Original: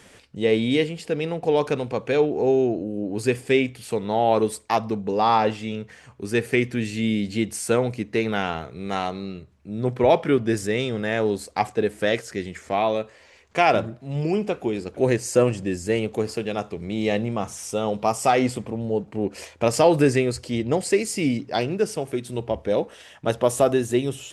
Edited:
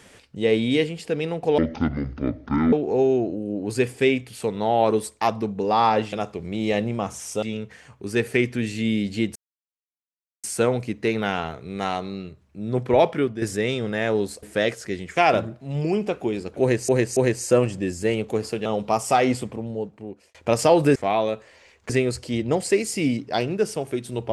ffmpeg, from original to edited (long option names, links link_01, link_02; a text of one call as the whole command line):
ffmpeg -i in.wav -filter_complex "[0:a]asplit=15[link_01][link_02][link_03][link_04][link_05][link_06][link_07][link_08][link_09][link_10][link_11][link_12][link_13][link_14][link_15];[link_01]atrim=end=1.584[link_16];[link_02]atrim=start=1.58:end=2.21,asetpts=PTS-STARTPTS,asetrate=24255,aresample=44100[link_17];[link_03]atrim=start=2.206:end=5.612[link_18];[link_04]atrim=start=16.498:end=17.802[link_19];[link_05]atrim=start=5.608:end=7.54,asetpts=PTS-STARTPTS,afade=type=out:start_time=1.928:duration=0.004:curve=hsin,apad=pad_dur=1.08[link_20];[link_06]atrim=start=7.54:end=10.52,asetpts=PTS-STARTPTS,afade=type=in:duration=0.004:curve=hsin,afade=type=out:start_time=2.5:duration=0.48:curve=qsin:silence=0.316228[link_21];[link_07]atrim=start=10.52:end=11.532,asetpts=PTS-STARTPTS,afade=type=in:duration=0.004:curve=hsin:silence=0.316228[link_22];[link_08]atrim=start=11.888:end=12.632[link_23];[link_09]atrim=start=13.568:end=15.292[link_24];[link_10]atrim=start=15.008:end=15.292[link_25];[link_11]atrim=start=15.008:end=16.502[link_26];[link_12]atrim=start=17.798:end=19.49,asetpts=PTS-STARTPTS,afade=type=out:start_time=0.752:duration=0.94[link_27];[link_13]atrim=start=19.49:end=20.102,asetpts=PTS-STARTPTS,afade=type=in:duration=0.004:curve=hsin[link_28];[link_14]atrim=start=12.628:end=13.572[link_29];[link_15]atrim=start=20.098[link_30];[link_16][link_17]acrossfade=duration=0.004:curve1=hsin:curve2=hsin[link_31];[link_31][link_18]acrossfade=duration=0.004:curve1=hsin:curve2=hsin[link_32];[link_32][link_19]acrossfade=duration=0.004:curve1=hsin:curve2=hsin[link_33];[link_20][link_21][link_22]concat=n=3:v=0:a=1[link_34];[link_33][link_34]acrossfade=duration=0.004:curve1=hsin:curve2=hsin[link_35];[link_35][link_23]acrossfade=duration=0.004:curve1=hsin:curve2=hsin[link_36];[link_36][link_24]acrossfade=duration=0.004:curve1=hsin:curve2=hsin[link_37];[link_37][link_25]acrossfade=duration=0.004:curve1=hsin:curve2=hsin[link_38];[link_38][link_26]acrossfade=duration=0.004:curve1=hsin:curve2=hsin[link_39];[link_27][link_28]concat=n=2:v=0:a=1[link_40];[link_39][link_40]acrossfade=duration=0.004:curve1=hsin:curve2=hsin[link_41];[link_41][link_29]acrossfade=duration=0.004:curve1=hsin:curve2=hsin[link_42];[link_42][link_30]acrossfade=duration=0.004:curve1=hsin:curve2=hsin" out.wav